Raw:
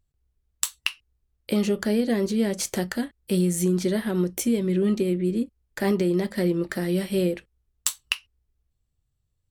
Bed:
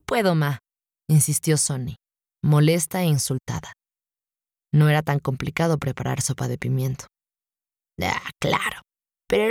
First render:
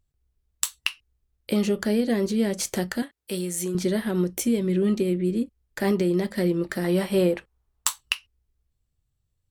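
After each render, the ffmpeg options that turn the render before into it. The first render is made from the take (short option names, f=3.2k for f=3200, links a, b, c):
-filter_complex "[0:a]asettb=1/sr,asplit=3[a][b][c];[a]atrim=end=3.024[d];[b]atrim=start=3.02:end=3.75,asetpts=PTS-STARTPTS,afade=t=in:d=0.004:c=qsin,afade=t=out:st=0.726:d=0.004:c=qsin,highpass=f=530:p=1[e];[c]atrim=start=3.746[f];[d][e]acrossfade=d=0.004:c1=hsin:c2=qsin[g];[g][f]acrossfade=d=0.004:c1=qsin:c2=hsin,asettb=1/sr,asplit=3[h][i][j];[h]atrim=end=6.844[k];[i]atrim=start=6.84:end=8.01,asetpts=PTS-STARTPTS,afade=t=in:d=0.004:c=qsin,afade=t=out:st=1.166:d=0.004:c=qsin,equalizer=f=940:w=0.97:g=11.5[l];[j]atrim=start=8.006[m];[k][l]acrossfade=d=0.004:c1=hsin:c2=qsin[n];[n][m]acrossfade=d=0.004:c1=qsin:c2=hsin"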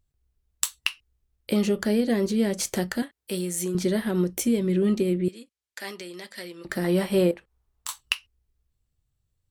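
-filter_complex "[0:a]asettb=1/sr,asplit=3[a][b][c];[a]atrim=end=5.284[d];[b]atrim=start=5.28:end=6.65,asetpts=PTS-STARTPTS,afade=t=in:d=0.004:c=qsin,afade=t=out:st=1.366:d=0.004:c=qsin,bandpass=f=4.9k:t=q:w=0.5[e];[c]atrim=start=6.646[f];[d][e]acrossfade=d=0.004:c1=hsin:c2=qsin[g];[g][f]acrossfade=d=0.004:c1=qsin:c2=hsin,asettb=1/sr,asplit=3[h][i][j];[h]atrim=end=7.314[k];[i]atrim=start=7.31:end=7.89,asetpts=PTS-STARTPTS,afade=t=in:d=0.004:c=qsin,afade=t=out:st=0.576:d=0.004:c=qsin,acompressor=threshold=-55dB:ratio=1.5:attack=3.2:release=140:knee=1:detection=peak[l];[j]atrim=start=7.886[m];[k][l]acrossfade=d=0.004:c1=hsin:c2=qsin[n];[n][m]acrossfade=d=0.004:c1=qsin:c2=hsin"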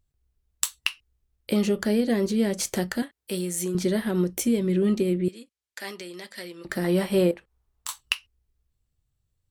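-af anull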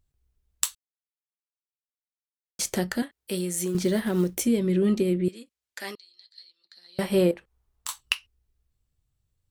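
-filter_complex "[0:a]asettb=1/sr,asplit=3[a][b][c];[a]atrim=end=3.594[d];[b]atrim=start=3.59:end=4.44,asetpts=PTS-STARTPTS,afade=t=in:d=0.004:c=qsin,afade=t=out:st=0.846:d=0.004:c=qsin,acrusher=bits=7:mode=log:mix=0:aa=0.000001[e];[c]atrim=start=4.436[f];[d][e]acrossfade=d=0.004:c1=hsin:c2=qsin[g];[g][f]acrossfade=d=0.004:c1=qsin:c2=hsin,asettb=1/sr,asplit=3[h][i][j];[h]atrim=end=5.954[k];[i]atrim=start=5.95:end=6.99,asetpts=PTS-STARTPTS,afade=t=in:d=0.004:c=qsin,afade=t=out:st=1.036:d=0.004:c=qsin,bandpass=f=4.2k:t=q:w=13[l];[j]atrim=start=6.986[m];[k][l]acrossfade=d=0.004:c1=hsin:c2=qsin[n];[n][m]acrossfade=d=0.004:c1=qsin:c2=hsin,asplit=3[o][p][q];[o]atrim=end=0.75,asetpts=PTS-STARTPTS,afade=t=out:st=0.746:d=0.004:c=hsin[r];[p]atrim=start=0.75:end=2.59,asetpts=PTS-STARTPTS,volume=0[s];[q]atrim=start=2.59,asetpts=PTS-STARTPTS,afade=t=in:d=0.004:c=hsin[t];[r][s][t]concat=n=3:v=0:a=1"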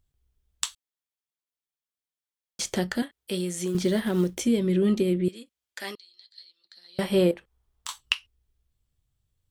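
-filter_complex "[0:a]acrossover=split=8000[a][b];[b]acompressor=threshold=-46dB:ratio=4:attack=1:release=60[c];[a][c]amix=inputs=2:normalize=0,equalizer=f=3.3k:t=o:w=0.2:g=5"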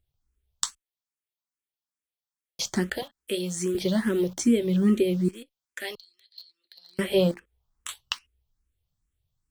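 -filter_complex "[0:a]asplit=2[a][b];[b]acrusher=bits=6:mix=0:aa=0.000001,volume=-7dB[c];[a][c]amix=inputs=2:normalize=0,asplit=2[d][e];[e]afreqshift=2.4[f];[d][f]amix=inputs=2:normalize=1"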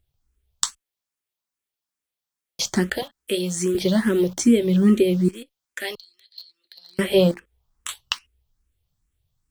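-af "volume=5dB"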